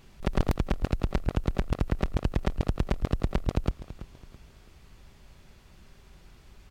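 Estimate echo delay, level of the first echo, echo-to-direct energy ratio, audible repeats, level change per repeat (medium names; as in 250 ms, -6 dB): 331 ms, -15.5 dB, -15.0 dB, 3, -9.5 dB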